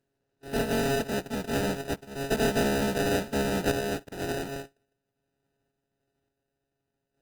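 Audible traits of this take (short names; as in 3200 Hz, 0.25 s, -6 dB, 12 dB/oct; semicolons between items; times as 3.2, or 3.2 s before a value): a buzz of ramps at a fixed pitch in blocks of 64 samples; random-step tremolo; aliases and images of a low sample rate 1100 Hz, jitter 0%; Opus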